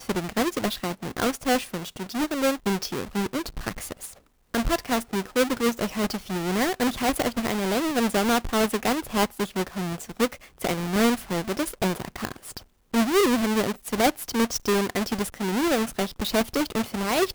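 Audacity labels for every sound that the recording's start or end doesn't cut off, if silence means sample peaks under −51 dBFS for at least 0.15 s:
4.540000	12.640000	sound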